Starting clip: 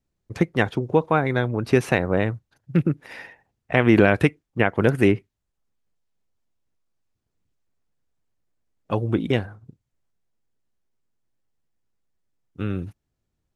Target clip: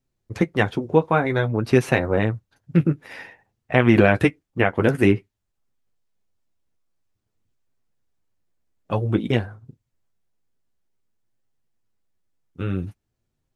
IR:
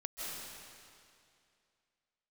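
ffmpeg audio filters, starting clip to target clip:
-af "flanger=delay=7.4:depth=5:regen=-31:speed=0.52:shape=triangular,volume=1.68"

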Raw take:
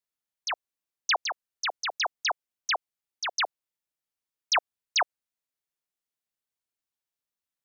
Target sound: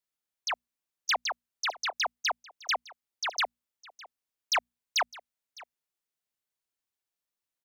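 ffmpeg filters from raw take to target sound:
-filter_complex "[0:a]bandreject=f=60:t=h:w=6,bandreject=f=120:t=h:w=6,bandreject=f=180:t=h:w=6,bandreject=f=240:t=h:w=6,asoftclip=type=tanh:threshold=0.0891,asplit=2[s0][s1];[s1]aecho=0:1:608:0.0891[s2];[s0][s2]amix=inputs=2:normalize=0"

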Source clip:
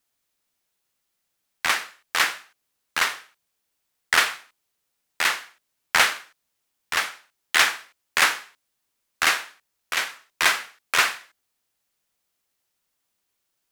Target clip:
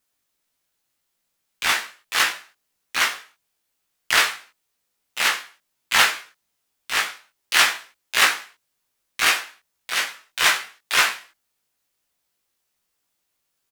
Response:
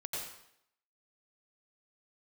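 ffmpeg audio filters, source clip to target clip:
-filter_complex "[0:a]asplit=2[s0][s1];[s1]asetrate=66075,aresample=44100,atempo=0.66742,volume=0.631[s2];[s0][s2]amix=inputs=2:normalize=0,asplit=2[s3][s4];[s4]adelay=18,volume=0.668[s5];[s3][s5]amix=inputs=2:normalize=0,volume=0.891"

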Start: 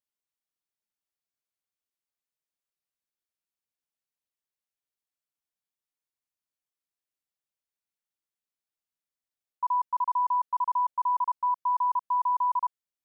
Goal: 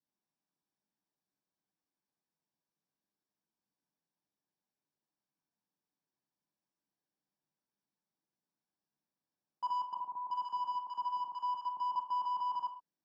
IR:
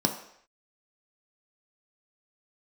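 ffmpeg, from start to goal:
-filter_complex "[0:a]adynamicequalizer=threshold=0.0126:dfrequency=940:dqfactor=1.5:tfrequency=940:tqfactor=1.5:attack=5:release=100:ratio=0.375:range=3.5:mode=cutabove:tftype=bell,asoftclip=type=tanh:threshold=0.0112,aemphasis=mode=reproduction:type=75kf,asettb=1/sr,asplit=3[s0][s1][s2];[s0]atrim=end=9.944[s3];[s1]atrim=start=9.94:end=11.96,asetpts=PTS-STARTPTS,afade=t=in:d=0.004:c=qsin,afade=t=out:st=2.016:d=0.004:c=qsin,acrossover=split=1000[s4][s5];[s5]adelay=370[s6];[s4][s6]amix=inputs=2:normalize=0,atrim=end_sample=89082[s7];[s2]atrim=start=11.956[s8];[s3][s7]acrossfade=d=0.004:c1=hsin:c2=qsin[s9];[s9][s8]acrossfade=d=0.004:c1=qsin:c2=hsin[s10];[1:a]atrim=start_sample=2205,afade=t=out:st=0.18:d=0.01,atrim=end_sample=8379[s11];[s10][s11]afir=irnorm=-1:irlink=0,volume=0.447"

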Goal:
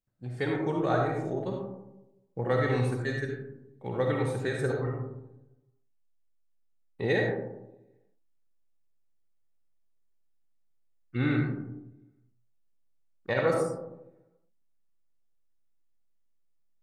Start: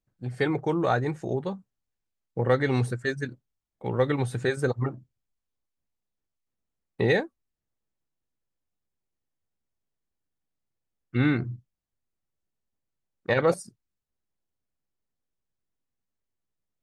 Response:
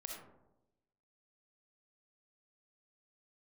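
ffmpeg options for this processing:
-filter_complex "[0:a]asettb=1/sr,asplit=3[s0][s1][s2];[s0]atrim=end=4.854[s3];[s1]atrim=start=4.85:end=7.04,asetpts=PTS-STARTPTS,afade=t=in:d=0.004:c=qsin,afade=t=out:st=2.186:d=0.004:c=qsin,flanger=delay=20:depth=4.5:speed=1.2[s4];[s2]atrim=start=7.036[s5];[s3][s4]acrossfade=d=0.004:c1=hsin:c2=qsin[s6];[s6][s5]acrossfade=d=0.004:c1=qsin:c2=hsin[s7];[1:a]atrim=start_sample=2205[s8];[s7][s8]afir=irnorm=-1:irlink=0"

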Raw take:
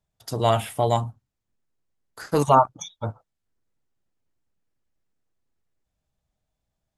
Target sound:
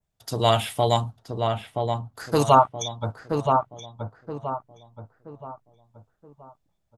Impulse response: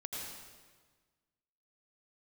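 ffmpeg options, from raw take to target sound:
-filter_complex "[0:a]adynamicequalizer=threshold=0.00631:dfrequency=3800:dqfactor=1.1:tfrequency=3800:tqfactor=1.1:attack=5:release=100:ratio=0.375:range=4:mode=boostabove:tftype=bell,asplit=2[s0][s1];[s1]adelay=975,lowpass=f=1600:p=1,volume=0.631,asplit=2[s2][s3];[s3]adelay=975,lowpass=f=1600:p=1,volume=0.39,asplit=2[s4][s5];[s5]adelay=975,lowpass=f=1600:p=1,volume=0.39,asplit=2[s6][s7];[s7]adelay=975,lowpass=f=1600:p=1,volume=0.39,asplit=2[s8][s9];[s9]adelay=975,lowpass=f=1600:p=1,volume=0.39[s10];[s2][s4][s6][s8][s10]amix=inputs=5:normalize=0[s11];[s0][s11]amix=inputs=2:normalize=0"

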